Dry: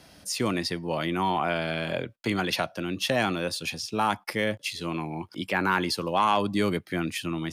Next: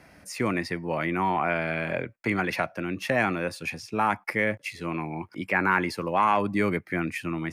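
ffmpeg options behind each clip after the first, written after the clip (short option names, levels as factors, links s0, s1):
-af "highshelf=f=2700:t=q:w=3:g=-6.5"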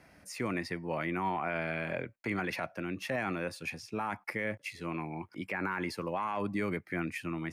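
-af "alimiter=limit=0.141:level=0:latency=1:release=40,volume=0.501"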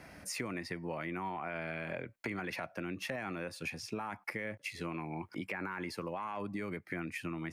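-af "acompressor=threshold=0.00708:ratio=6,volume=2.11"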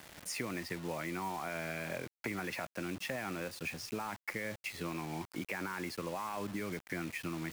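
-af "acrusher=bits=7:mix=0:aa=0.000001"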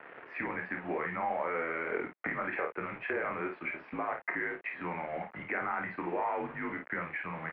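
-af "aecho=1:1:27|53:0.473|0.473,highpass=f=450:t=q:w=0.5412,highpass=f=450:t=q:w=1.307,lowpass=f=2400:t=q:w=0.5176,lowpass=f=2400:t=q:w=0.7071,lowpass=f=2400:t=q:w=1.932,afreqshift=-160,volume=2"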